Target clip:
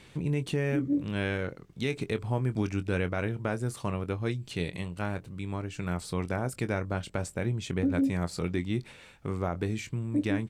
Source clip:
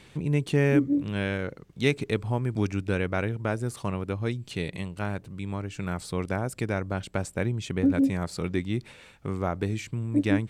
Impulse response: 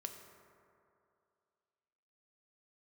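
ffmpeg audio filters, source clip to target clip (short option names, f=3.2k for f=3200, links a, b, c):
-filter_complex "[0:a]asplit=2[a][b];[b]adelay=23,volume=-12dB[c];[a][c]amix=inputs=2:normalize=0,alimiter=limit=-17.5dB:level=0:latency=1:release=73,volume=-1.5dB"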